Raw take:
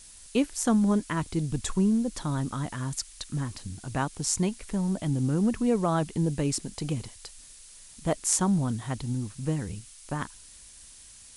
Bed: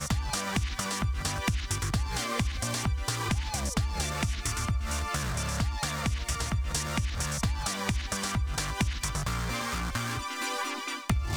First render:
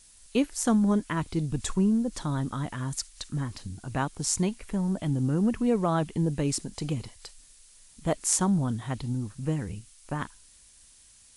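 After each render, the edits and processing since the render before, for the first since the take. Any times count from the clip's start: noise print and reduce 6 dB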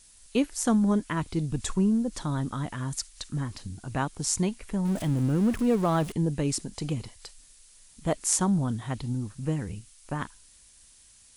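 4.85–6.12 s: jump at every zero crossing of -35 dBFS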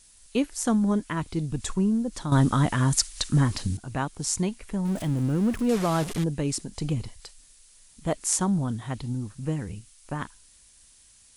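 2.32–3.77 s: gain +10 dB; 5.69–6.24 s: one-bit delta coder 64 kbps, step -28 dBFS; 6.75–7.20 s: bass shelf 120 Hz +8.5 dB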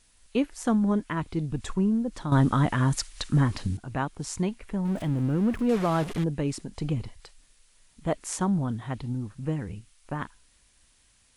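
tone controls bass -1 dB, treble -10 dB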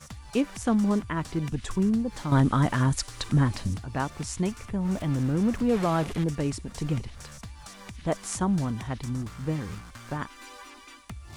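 add bed -13.5 dB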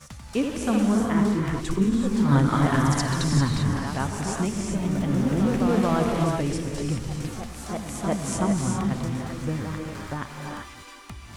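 gated-style reverb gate 420 ms rising, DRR 1 dB; ever faster or slower copies 97 ms, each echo +1 st, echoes 3, each echo -6 dB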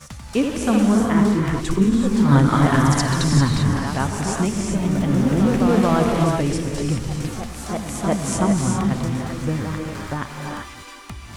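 trim +5 dB

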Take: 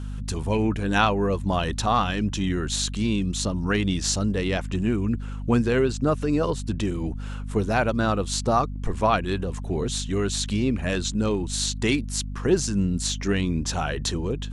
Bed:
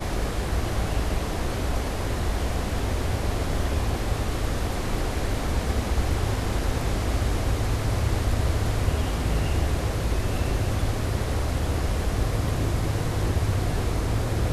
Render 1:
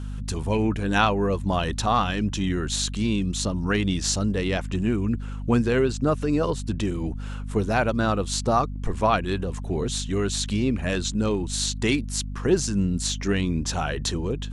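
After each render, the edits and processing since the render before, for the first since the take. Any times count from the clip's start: no audible change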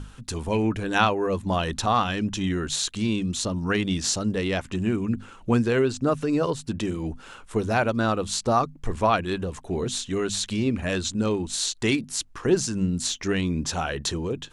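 hum notches 50/100/150/200/250 Hz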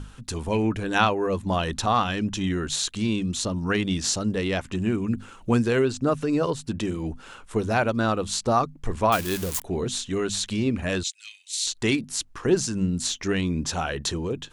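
5.06–5.85 s: treble shelf 6.5 kHz +6 dB; 9.12–9.62 s: zero-crossing glitches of -19.5 dBFS; 11.03–11.67 s: elliptic high-pass 2.1 kHz, stop band 70 dB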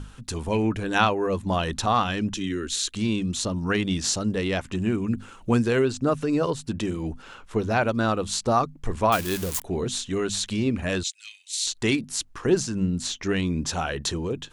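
2.34–2.93 s: static phaser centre 320 Hz, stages 4; 7.22–7.83 s: peaking EQ 9.1 kHz -9.5 dB 0.6 oct; 12.62–13.31 s: treble shelf 5.4 kHz -> 8.2 kHz -8 dB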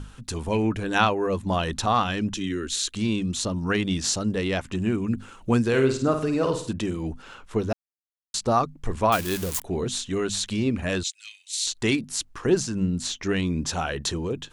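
5.68–6.73 s: flutter echo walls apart 9 m, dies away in 0.46 s; 7.73–8.34 s: mute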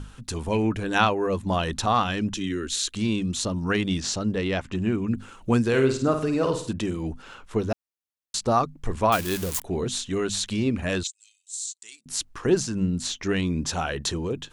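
4.00–5.14 s: distance through air 58 m; 11.07–12.06 s: band-pass filter 7.7 kHz, Q 3.6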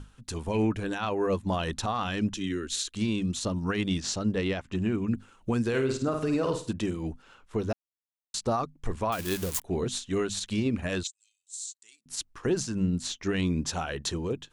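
peak limiter -17.5 dBFS, peak gain reduction 11.5 dB; upward expansion 1.5:1, over -45 dBFS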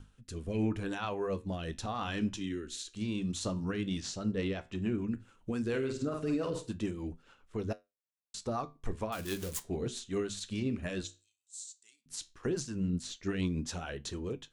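rotary cabinet horn 0.8 Hz, later 7 Hz, at 3.59 s; flange 0.14 Hz, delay 9 ms, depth 7.7 ms, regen -71%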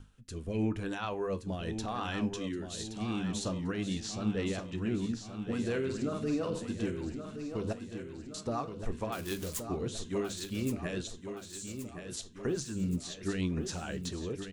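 feedback delay 1122 ms, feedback 54%, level -8.5 dB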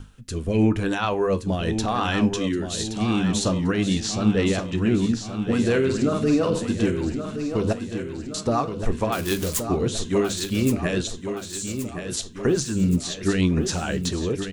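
trim +12 dB

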